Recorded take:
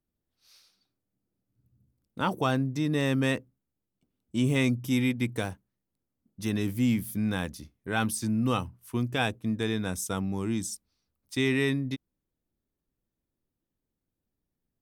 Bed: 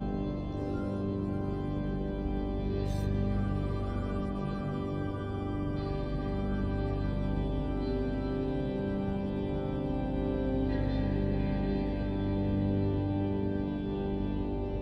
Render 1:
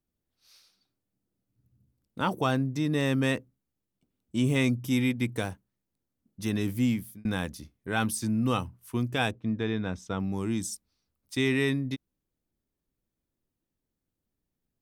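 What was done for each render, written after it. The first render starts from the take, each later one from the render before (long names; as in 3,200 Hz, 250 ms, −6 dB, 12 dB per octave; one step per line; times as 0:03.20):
0:06.84–0:07.25: fade out
0:09.31–0:10.20: high-frequency loss of the air 190 metres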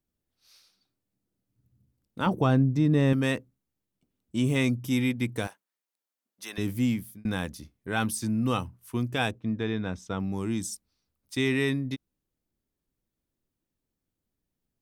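0:02.26–0:03.13: spectral tilt −2.5 dB per octave
0:05.47–0:06.58: high-pass filter 790 Hz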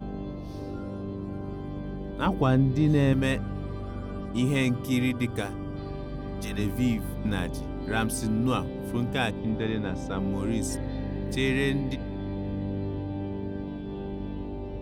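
mix in bed −2 dB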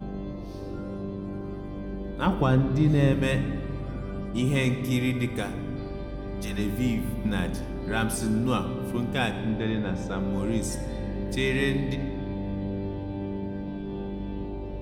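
rectangular room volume 2,700 cubic metres, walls mixed, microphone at 0.93 metres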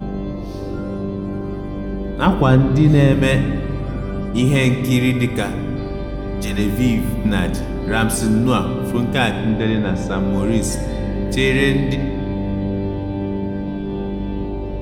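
level +9.5 dB
brickwall limiter −3 dBFS, peak gain reduction 2.5 dB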